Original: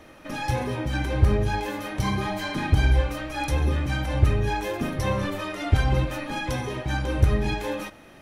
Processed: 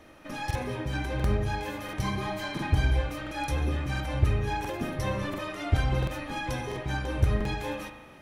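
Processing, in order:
spring reverb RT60 1.4 s, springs 37 ms, chirp 80 ms, DRR 7.5 dB
regular buffer underruns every 0.69 s, samples 2,048, repeat, from 0:00.46
level −4.5 dB

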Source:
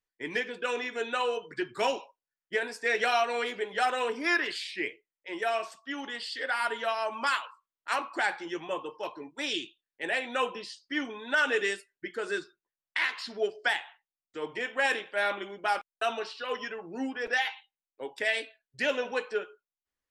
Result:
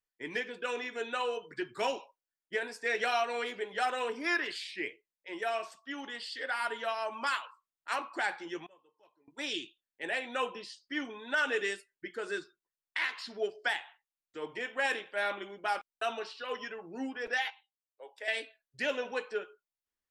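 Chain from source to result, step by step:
0:08.66–0:09.28: gate with flip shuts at −41 dBFS, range −25 dB
0:17.50–0:18.28: four-pole ladder high-pass 450 Hz, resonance 40%
level −4 dB

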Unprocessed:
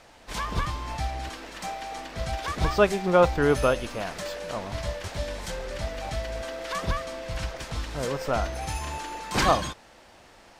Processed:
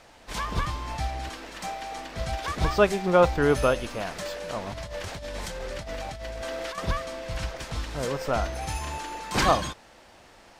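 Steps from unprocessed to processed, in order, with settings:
0:04.67–0:06.78: compressor whose output falls as the input rises −35 dBFS, ratio −1

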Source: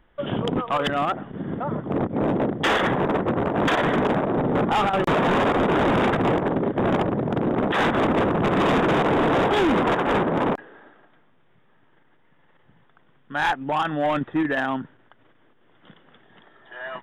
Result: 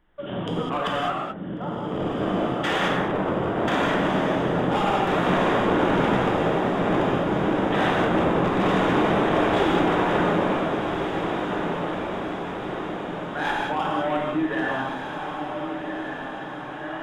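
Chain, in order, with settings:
mains-hum notches 50/100/150 Hz
on a send: feedback delay with all-pass diffusion 1,481 ms, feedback 61%, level −6 dB
on the sum: reverb whose tail is shaped and stops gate 230 ms flat, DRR −3.5 dB
level −7 dB

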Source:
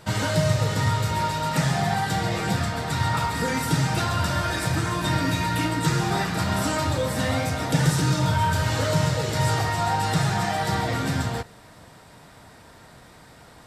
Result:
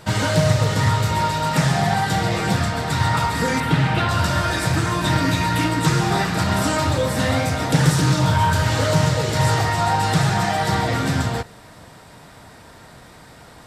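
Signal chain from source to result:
0:03.60–0:04.09: high shelf with overshoot 4,300 Hz −10.5 dB, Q 1.5
highs frequency-modulated by the lows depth 0.22 ms
level +4.5 dB

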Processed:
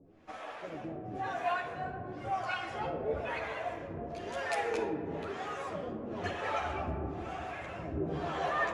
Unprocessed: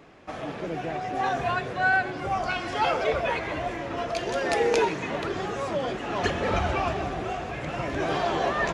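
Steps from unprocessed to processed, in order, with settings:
two-band tremolo in antiphase 1 Hz, depth 100%, crossover 530 Hz
multi-voice chorus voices 2, 0.87 Hz, delay 11 ms, depth 2.1 ms
convolution reverb RT60 2.8 s, pre-delay 5 ms, DRR 7.5 dB
dynamic equaliser 5,000 Hz, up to −6 dB, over −54 dBFS, Q 0.91
level −1.5 dB

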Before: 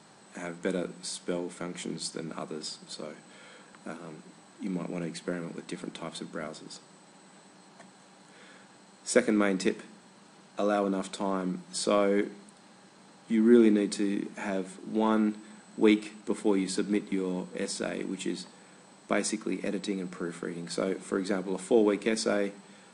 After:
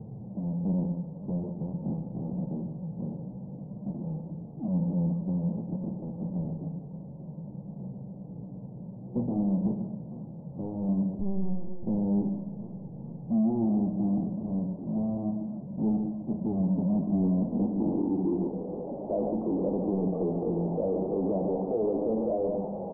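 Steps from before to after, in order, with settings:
low-pass filter sweep 130 Hz → 680 Hz, 0:16.30–0:19.37
power curve on the samples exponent 0.5
0:11.19–0:11.83: linear-prediction vocoder at 8 kHz pitch kept
Butterworth low-pass 870 Hz 48 dB per octave
single-tap delay 145 ms −10 dB
brickwall limiter −16.5 dBFS, peak gain reduction 9.5 dB
flanger 0.17 Hz, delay 8.9 ms, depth 8.8 ms, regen −35%
feedback echo with a swinging delay time 457 ms, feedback 52%, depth 197 cents, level −17.5 dB
level −1 dB

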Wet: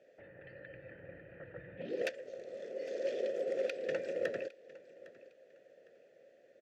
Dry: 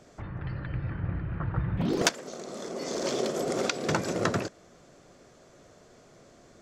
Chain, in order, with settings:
wrap-around overflow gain 11.5 dB
dynamic equaliser 830 Hz, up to −5 dB, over −48 dBFS, Q 2.5
formant filter e
on a send: repeating echo 807 ms, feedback 28%, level −19.5 dB
on the sum: level +2 dB

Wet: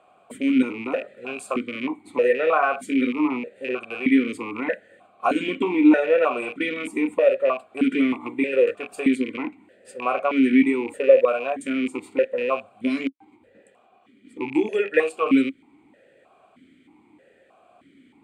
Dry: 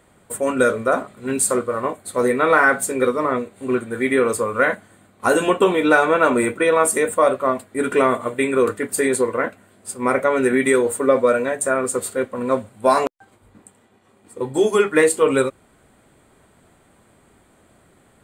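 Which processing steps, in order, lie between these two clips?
loose part that buzzes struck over −33 dBFS, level −19 dBFS
parametric band 670 Hz −3 dB 1.6 octaves
in parallel at +2.5 dB: downward compressor, threshold −27 dBFS, peak gain reduction 15 dB
on the sum: formant filter that steps through the vowels 3.2 Hz
level +5 dB

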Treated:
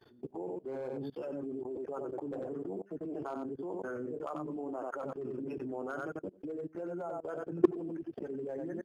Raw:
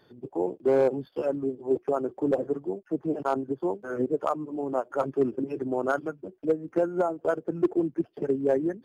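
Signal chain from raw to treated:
flanger 0.62 Hz, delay 2.3 ms, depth 6.6 ms, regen −47%
single-tap delay 91 ms −8.5 dB
output level in coarse steps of 22 dB
level +5.5 dB

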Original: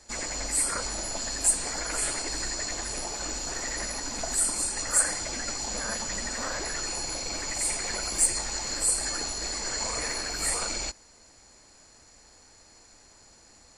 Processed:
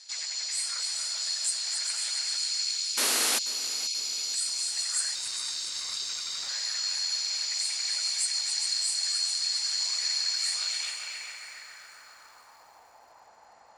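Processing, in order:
0:02.37–0:04.34: time-frequency box erased 520–2,100 Hz
in parallel at +3 dB: downward compressor 16 to 1, threshold −40 dBFS, peak gain reduction 23.5 dB
on the sum: parametric band 320 Hz −9 dB 1.5 octaves
on a send: echo machine with several playback heads 136 ms, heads second and third, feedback 53%, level −7 dB
on the sum: band-pass filter sweep 4,200 Hz → 820 Hz, 0:10.51–0:12.82
0:02.97–0:03.39: sound drawn into the spectrogram noise 220–12,000 Hz −30 dBFS
0:05.15–0:06.49: ring modulation 490 Hz
feedback echo at a low word length 485 ms, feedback 55%, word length 9 bits, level −15 dB
level +3.5 dB

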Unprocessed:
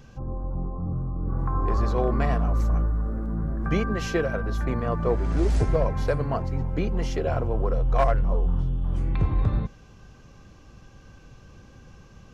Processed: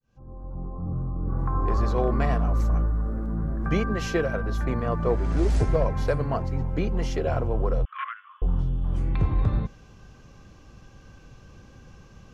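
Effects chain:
fade in at the beginning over 1.01 s
0:07.85–0:08.42: Chebyshev band-pass filter 1,100–3,400 Hz, order 5

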